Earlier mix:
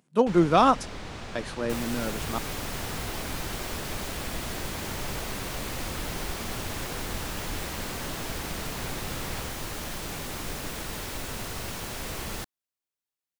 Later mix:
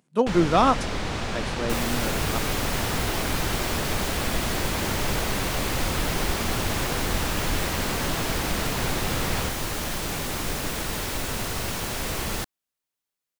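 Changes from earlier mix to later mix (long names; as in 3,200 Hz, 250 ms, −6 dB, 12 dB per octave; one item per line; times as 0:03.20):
first sound +10.0 dB
second sound +6.0 dB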